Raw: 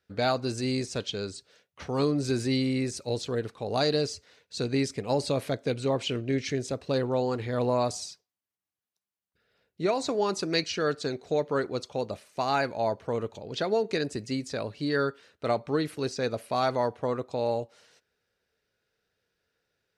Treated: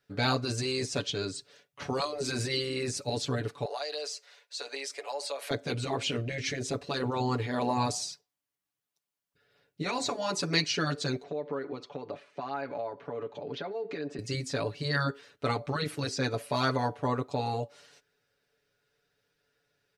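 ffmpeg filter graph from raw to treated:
-filter_complex "[0:a]asettb=1/sr,asplit=3[a][b][c];[a]atrim=end=3.654[d];[b]atrim=start=3.65:end=5.51,asetpts=PTS-STARTPTS,afade=t=in:d=0.004:c=qsin,afade=t=out:st=1.856:d=0.004:c=qsin,highpass=f=570:w=0.5412,highpass=f=570:w=1.3066,acompressor=threshold=-36dB:ratio=4:attack=3.2:release=140:knee=1:detection=peak[e];[c]atrim=start=5.506[f];[d][e]acrossfade=d=0.004:c1=hsin:c2=qsin[g];[g][f]acrossfade=d=0.004:c1=qsin:c2=hsin,asettb=1/sr,asplit=3[h][i][j];[h]atrim=end=11.234[k];[i]atrim=start=11.23:end=14.19,asetpts=PTS-STARTPTS,afade=t=in:d=0.004:c=qsin,afade=t=out:st=2.956:d=0.004:c=qsin,acompressor=threshold=-33dB:ratio=16:attack=3.2:release=140:knee=1:detection=peak,highpass=190,lowpass=2.8k[l];[j]atrim=start=14.186[m];[k][l]acrossfade=d=0.004:c1=hsin:c2=qsin[n];[n][m]acrossfade=d=0.004:c1=qsin:c2=hsin,aecho=1:1:7:0.91,afftfilt=real='re*lt(hypot(re,im),0.355)':imag='im*lt(hypot(re,im),0.355)':win_size=1024:overlap=0.75"

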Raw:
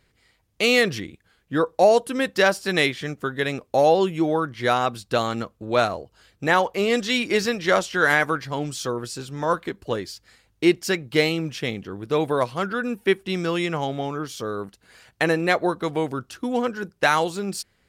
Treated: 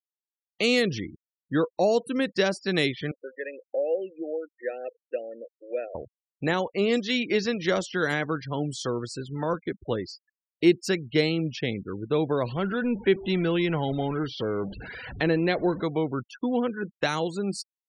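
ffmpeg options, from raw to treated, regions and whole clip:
-filter_complex "[0:a]asettb=1/sr,asplit=3[a][b][c];[a]atrim=end=3.114[d];[b]atrim=start=3.11:end=5.95,asetpts=PTS-STARTPTS,afade=t=in:d=0.004:c=qsin,afade=t=out:st=2.836:d=0.004:c=qsin,asplit=3[e][f][g];[e]bandpass=f=530:t=q:w=8,volume=0dB[h];[f]bandpass=f=1.84k:t=q:w=8,volume=-6dB[i];[g]bandpass=f=2.48k:t=q:w=8,volume=-9dB[j];[h][i][j]amix=inputs=3:normalize=0,equalizer=f=320:t=o:w=0.52:g=4[k];[c]atrim=start=5.946[l];[d][k]acrossfade=d=0.004:c1=hsin:c2=qsin[m];[m][l]acrossfade=d=0.004:c1=qsin:c2=hsin,asettb=1/sr,asplit=3[n][o][p];[n]atrim=end=6.984[q];[o]atrim=start=6.98:end=7.52,asetpts=PTS-STARTPTS,afade=t=in:d=0.004:c=qsin,afade=t=out:st=0.536:d=0.004:c=qsin,lowpass=6.4k,lowshelf=f=160:g=-3.5,aeval=exprs='sgn(val(0))*max(abs(val(0))-0.00335,0)':c=same[r];[p]atrim=start=7.516[s];[q][r]acrossfade=d=0.004:c1=hsin:c2=qsin[t];[t][s]acrossfade=d=0.004:c1=qsin:c2=hsin,asettb=1/sr,asplit=3[u][v][w];[u]atrim=end=12.444[x];[v]atrim=start=12.44:end=15.82,asetpts=PTS-STARTPTS,afade=t=in:d=0.004:c=qsin,afade=t=out:st=3.376:d=0.004:c=qsin,aeval=exprs='val(0)+0.5*0.0266*sgn(val(0))':c=same,lowpass=f=4.7k:w=0.5412,lowpass=f=4.7k:w=1.3066,bandreject=f=1.2k:w=10[y];[w]atrim=start=15.816[z];[x][y]acrossfade=d=0.004:c1=hsin:c2=qsin[aa];[aa][z]acrossfade=d=0.004:c1=qsin:c2=hsin,afftfilt=real='re*gte(hypot(re,im),0.02)':imag='im*gte(hypot(re,im),0.02)':win_size=1024:overlap=0.75,highshelf=f=7k:g=-9,acrossover=split=460|3000[ab][ac][ad];[ac]acompressor=threshold=-34dB:ratio=2.5[ae];[ab][ae][ad]amix=inputs=3:normalize=0"

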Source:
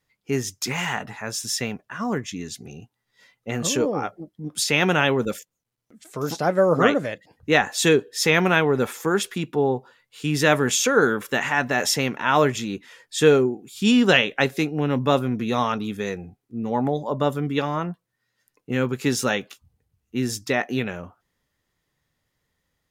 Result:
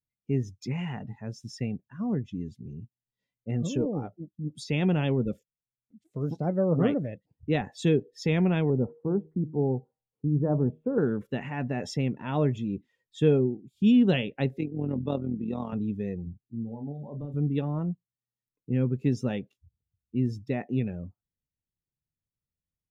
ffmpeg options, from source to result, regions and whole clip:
-filter_complex "[0:a]asettb=1/sr,asplit=3[a][b][c];[a]atrim=end=8.704[d];[b]atrim=start=8.7:end=10.98,asetpts=PTS-STARTPTS,afade=t=in:d=0.004:c=qsin,afade=t=out:st=2.276:d=0.004:c=qsin,lowpass=f=1.1k:w=0.5412,lowpass=f=1.1k:w=1.3066,bandreject=f=156.5:t=h:w=4,bandreject=f=313:t=h:w=4,bandreject=f=469.5:t=h:w=4,bandreject=f=626:t=h:w=4,bandreject=f=782.5:t=h:w=4,bandreject=f=939:t=h:w=4[e];[c]atrim=start=10.976[f];[d][e]acrossfade=d=0.004:c1=hsin:c2=qsin[g];[g][f]acrossfade=d=0.004:c1=qsin:c2=hsin,asettb=1/sr,asplit=3[h][i][j];[h]atrim=end=14.584[k];[i]atrim=start=14.58:end=15.73,asetpts=PTS-STARTPTS,afade=t=in:d=0.004:c=qsin,afade=t=out:st=1.146:d=0.004:c=qsin,highpass=170,adynamicsmooth=sensitivity=8:basefreq=4.4k,tremolo=f=42:d=0.621[l];[j]atrim=start=15.726[m];[k][l]acrossfade=d=0.004:c1=hsin:c2=qsin[n];[n][m]acrossfade=d=0.004:c1=qsin:c2=hsin,asettb=1/sr,asplit=3[o][p][q];[o]atrim=end=16.234[r];[p]atrim=start=16.23:end=17.34,asetpts=PTS-STARTPTS,afade=t=in:d=0.004:c=qsin,afade=t=out:st=1.106:d=0.004:c=qsin,acompressor=threshold=-31dB:ratio=5:attack=3.2:release=140:knee=1:detection=peak,asplit=2[s][t];[t]adelay=35,volume=-5dB[u];[s][u]amix=inputs=2:normalize=0,atrim=end_sample=48951[v];[q]atrim=start=17.336[w];[r][v]acrossfade=d=0.004:c1=hsin:c2=qsin[x];[x][w]acrossfade=d=0.004:c1=qsin:c2=hsin,bass=f=250:g=9,treble=f=4k:g=-11,afftdn=nr=17:nf=-34,equalizer=f=1.4k:w=0.9:g=-14.5,volume=-6dB"

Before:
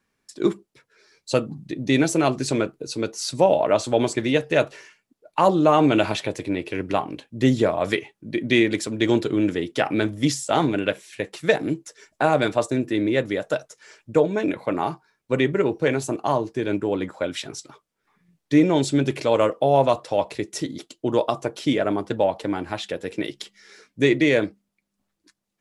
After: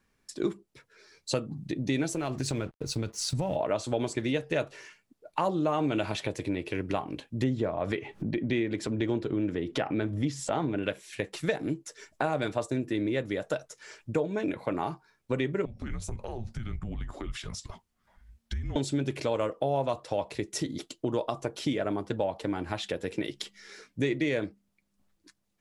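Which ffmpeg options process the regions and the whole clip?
-filter_complex "[0:a]asettb=1/sr,asplit=3[a][b][c];[a]atrim=end=2.134[d];[b]atrim=start=2.13:end=3.56,asetpts=PTS-STARTPTS,afade=t=in:d=0.004:c=qsin,afade=t=out:st=1.426:d=0.004:c=qsin,asubboost=boost=12:cutoff=160,acompressor=threshold=-22dB:ratio=3:attack=3.2:release=140:knee=1:detection=peak,aeval=exprs='sgn(val(0))*max(abs(val(0))-0.00376,0)':c=same[e];[c]atrim=start=3.556[f];[d][e]acrossfade=d=0.004:c1=hsin:c2=qsin[g];[g][f]acrossfade=d=0.004:c1=qsin:c2=hsin,asettb=1/sr,asplit=3[h][i][j];[h]atrim=end=7.444[k];[i]atrim=start=7.44:end=10.83,asetpts=PTS-STARTPTS,afade=t=in:d=0.004:c=qsin,afade=t=out:st=3.386:d=0.004:c=qsin,lowpass=f=1.9k:p=1,acompressor=mode=upward:threshold=-20dB:ratio=2.5:attack=3.2:release=140:knee=2.83:detection=peak[l];[j]atrim=start=10.826[m];[k][l]acrossfade=d=0.004:c1=hsin:c2=qsin[n];[n][m]acrossfade=d=0.004:c1=qsin:c2=hsin,asettb=1/sr,asplit=3[o][p][q];[o]atrim=end=15.654[r];[p]atrim=start=15.65:end=18.76,asetpts=PTS-STARTPTS,afade=t=in:d=0.004:c=qsin,afade=t=out:st=3.106:d=0.004:c=qsin,afreqshift=-230,acompressor=threshold=-36dB:ratio=5:attack=3.2:release=140:knee=1:detection=peak[s];[q]atrim=start=18.756[t];[r][s]acrossfade=d=0.004:c1=hsin:c2=qsin[u];[u][t]acrossfade=d=0.004:c1=qsin:c2=hsin,lowshelf=f=79:g=11.5,acompressor=threshold=-30dB:ratio=2.5"

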